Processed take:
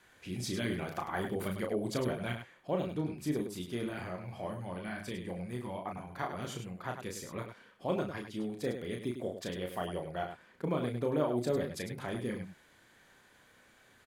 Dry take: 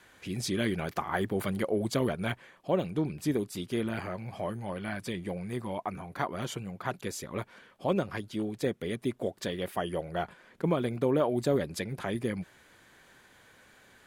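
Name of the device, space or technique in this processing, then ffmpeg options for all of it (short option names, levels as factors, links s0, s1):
slapback doubling: -filter_complex "[0:a]asplit=3[s0][s1][s2];[s1]adelay=33,volume=0.596[s3];[s2]adelay=102,volume=0.398[s4];[s0][s3][s4]amix=inputs=3:normalize=0,volume=0.501"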